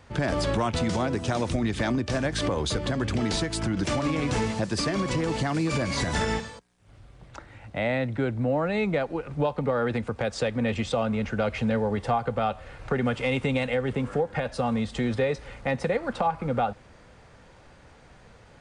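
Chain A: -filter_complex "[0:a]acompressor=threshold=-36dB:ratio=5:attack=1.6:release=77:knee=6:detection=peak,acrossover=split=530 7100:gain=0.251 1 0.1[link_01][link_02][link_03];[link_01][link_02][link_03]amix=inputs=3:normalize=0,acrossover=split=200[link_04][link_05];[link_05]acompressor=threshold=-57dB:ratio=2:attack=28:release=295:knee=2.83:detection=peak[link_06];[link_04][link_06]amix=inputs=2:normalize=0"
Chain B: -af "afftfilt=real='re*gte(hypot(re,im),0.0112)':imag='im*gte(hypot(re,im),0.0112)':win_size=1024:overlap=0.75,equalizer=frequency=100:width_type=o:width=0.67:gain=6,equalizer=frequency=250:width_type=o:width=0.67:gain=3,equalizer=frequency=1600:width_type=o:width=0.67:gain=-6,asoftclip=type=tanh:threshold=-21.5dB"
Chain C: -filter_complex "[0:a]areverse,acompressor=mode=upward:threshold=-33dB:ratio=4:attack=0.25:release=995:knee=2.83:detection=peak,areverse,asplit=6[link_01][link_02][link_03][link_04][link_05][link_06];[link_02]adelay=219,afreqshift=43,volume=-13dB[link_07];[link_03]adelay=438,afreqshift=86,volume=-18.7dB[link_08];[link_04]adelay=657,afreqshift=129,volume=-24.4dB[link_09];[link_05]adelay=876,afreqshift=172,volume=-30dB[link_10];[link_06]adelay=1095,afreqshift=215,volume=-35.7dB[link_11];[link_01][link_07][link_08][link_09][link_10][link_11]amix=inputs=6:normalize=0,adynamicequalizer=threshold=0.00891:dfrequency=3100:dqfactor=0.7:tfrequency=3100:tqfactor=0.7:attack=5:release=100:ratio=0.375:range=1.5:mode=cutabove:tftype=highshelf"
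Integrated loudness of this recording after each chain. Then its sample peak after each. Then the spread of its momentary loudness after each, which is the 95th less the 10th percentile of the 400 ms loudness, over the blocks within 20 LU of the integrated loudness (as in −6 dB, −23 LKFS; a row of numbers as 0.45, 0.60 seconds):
−51.0, −29.0, −27.0 LKFS; −29.5, −21.5, −14.0 dBFS; 8, 4, 18 LU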